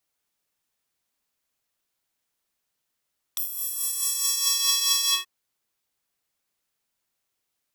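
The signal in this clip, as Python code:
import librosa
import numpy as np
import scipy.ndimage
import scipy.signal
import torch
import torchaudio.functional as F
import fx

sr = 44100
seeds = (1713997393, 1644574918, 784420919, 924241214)

y = fx.sub_patch_tremolo(sr, seeds[0], note=66, wave='square', wave2='square', interval_st=19, detune_cents=9, level2_db=-1, sub_db=-19, noise_db=-30.0, kind='highpass', cutoff_hz=1900.0, q=1.4, env_oct=3.0, env_decay_s=1.29, env_sustain_pct=45, attack_ms=5.8, decay_s=0.09, sustain_db=-6.5, release_s=0.16, note_s=1.72, lfo_hz=4.7, tremolo_db=5)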